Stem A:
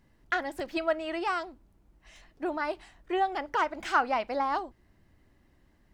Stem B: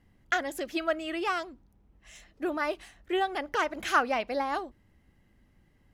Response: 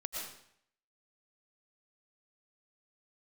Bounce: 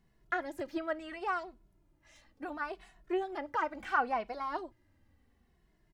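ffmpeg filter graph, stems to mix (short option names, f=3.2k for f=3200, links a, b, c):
-filter_complex "[0:a]asplit=2[a][b];[b]adelay=2.3,afreqshift=-0.72[c];[a][c]amix=inputs=2:normalize=1,volume=-3dB[d];[1:a]volume=-17.5dB[e];[d][e]amix=inputs=2:normalize=0,acrossover=split=2600[f][g];[g]acompressor=threshold=-54dB:ratio=4:attack=1:release=60[h];[f][h]amix=inputs=2:normalize=0"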